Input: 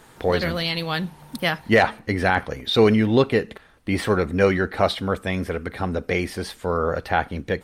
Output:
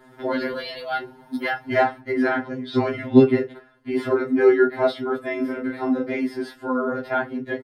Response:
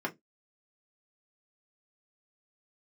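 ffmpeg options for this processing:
-filter_complex "[0:a]asettb=1/sr,asplit=3[a][b][c];[a]atrim=end=2.294[d];[b]atrim=start=2.29:end=2.9,asetpts=PTS-STARTPTS,afade=t=in:d=0.004:c=qsin,afade=t=out:st=0.606:d=0.004:c=qsin,lowpass=7.6k[e];[c]atrim=start=2.896[f];[d][e]acrossfade=d=0.004:c1=hsin:c2=qsin[g];[g][f]acrossfade=d=0.004:c1=qsin:c2=hsin,asplit=3[h][i][j];[h]afade=t=out:st=5.37:d=0.02[k];[i]asplit=2[l][m];[m]adelay=34,volume=-3.5dB[n];[l][n]amix=inputs=2:normalize=0,afade=t=in:st=5.37:d=0.02,afade=t=out:st=6.11:d=0.02[o];[j]afade=t=in:st=6.11:d=0.02[p];[k][o][p]amix=inputs=3:normalize=0[q];[1:a]atrim=start_sample=2205[r];[q][r]afir=irnorm=-1:irlink=0,afftfilt=real='re*2.45*eq(mod(b,6),0)':imag='im*2.45*eq(mod(b,6),0)':win_size=2048:overlap=0.75,volume=-4.5dB"

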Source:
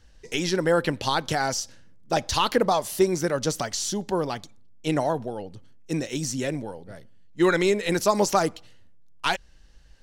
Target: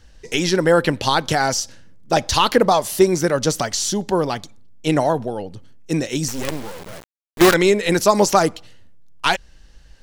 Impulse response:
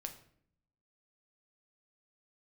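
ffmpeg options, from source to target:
-filter_complex "[0:a]asettb=1/sr,asplit=3[a][b][c];[a]atrim=end=6.284[d];[b]atrim=start=6.28:end=7.54,asetpts=PTS-STARTPTS,afade=t=in:d=0.004:c=qsin,afade=t=out:st=1.256:d=0.004:c=qsin,acrusher=bits=4:dc=4:mix=0:aa=0.000001[e];[c]atrim=start=7.536[f];[d][e]acrossfade=d=0.004:c1=hsin:c2=qsin[g];[g][f]acrossfade=d=0.004:c1=qsin:c2=hsin,volume=6.5dB"

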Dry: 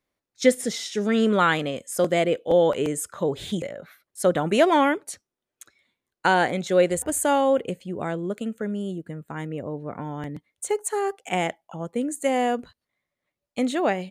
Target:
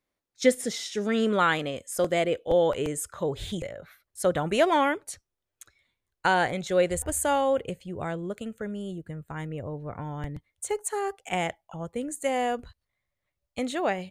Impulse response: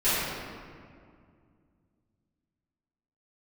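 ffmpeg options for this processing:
-af "asubboost=boost=9:cutoff=75,volume=-2.5dB"

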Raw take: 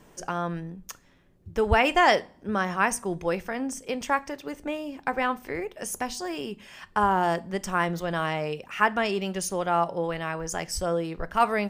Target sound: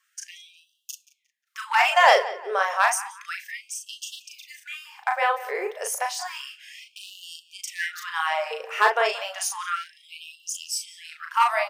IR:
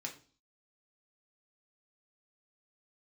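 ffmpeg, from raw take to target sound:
-filter_complex "[0:a]agate=range=-12dB:threshold=-49dB:ratio=16:detection=peak,lowshelf=f=180:g=8.5,asplit=2[a][b];[b]adelay=178,lowpass=f=3.7k:p=1,volume=-16.5dB,asplit=2[c][d];[d]adelay=178,lowpass=f=3.7k:p=1,volume=0.35,asplit=2[e][f];[f]adelay=178,lowpass=f=3.7k:p=1,volume=0.35[g];[a][c][e][g]amix=inputs=4:normalize=0,aeval=exprs='clip(val(0),-1,0.2)':c=same,asplit=2[h][i];[i]adelay=37,volume=-4dB[j];[h][j]amix=inputs=2:normalize=0,afftfilt=real='re*gte(b*sr/1024,380*pow(2700/380,0.5+0.5*sin(2*PI*0.31*pts/sr)))':imag='im*gte(b*sr/1024,380*pow(2700/380,0.5+0.5*sin(2*PI*0.31*pts/sr)))':win_size=1024:overlap=0.75,volume=3dB"

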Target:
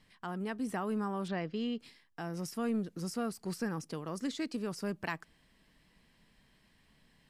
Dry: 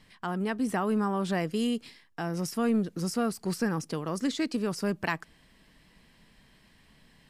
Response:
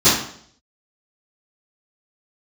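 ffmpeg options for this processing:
-filter_complex "[0:a]asettb=1/sr,asplit=3[a][b][c];[a]atrim=end=1.284[d];[b]atrim=start=1.28:end=1.8,asetpts=PTS-STARTPTS,afade=t=in:d=0.004:c=qsin,afade=t=out:st=0.516:d=0.004:c=qsin,lowpass=f=4.7k:w=0.5412,lowpass=f=4.7k:w=1.3066[e];[c]atrim=start=1.796[f];[d][e]acrossfade=d=0.004:c1=hsin:c2=qsin[g];[g][f]acrossfade=d=0.004:c1=qsin:c2=hsin,volume=-7dB"

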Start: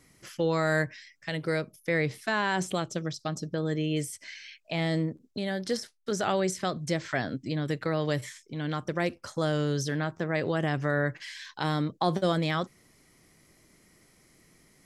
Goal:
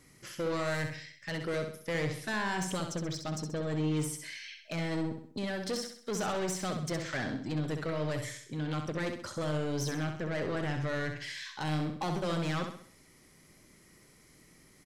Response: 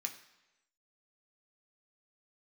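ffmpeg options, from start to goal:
-af "bandreject=f=690:w=12,asoftclip=type=tanh:threshold=-29.5dB,aecho=1:1:65|130|195|260|325:0.473|0.203|0.0875|0.0376|0.0162"

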